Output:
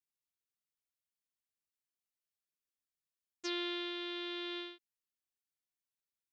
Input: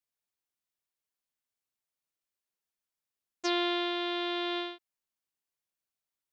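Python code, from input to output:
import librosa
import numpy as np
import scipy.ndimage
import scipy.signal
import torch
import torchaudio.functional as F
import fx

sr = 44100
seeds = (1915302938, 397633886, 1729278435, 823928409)

y = fx.peak_eq(x, sr, hz=760.0, db=-13.5, octaves=0.97)
y = y * librosa.db_to_amplitude(-6.0)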